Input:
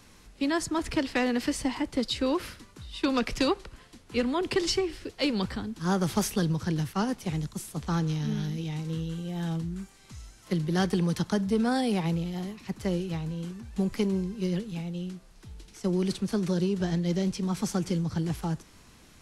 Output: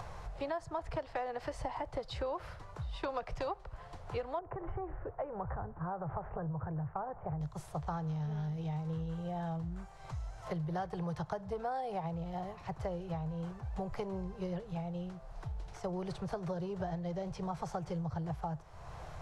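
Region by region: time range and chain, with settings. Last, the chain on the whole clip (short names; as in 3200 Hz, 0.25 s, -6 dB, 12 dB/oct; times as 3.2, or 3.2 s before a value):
4.39–7.41 inverse Chebyshev low-pass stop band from 4100 Hz, stop band 50 dB + compressor, threshold -30 dBFS
whole clip: upward compressor, threshold -38 dBFS; EQ curve 150 Hz 0 dB, 230 Hz -23 dB, 680 Hz +7 dB, 2600 Hz -13 dB, 6800 Hz -17 dB, 12000 Hz -23 dB; compressor 6:1, threshold -39 dBFS; gain +4 dB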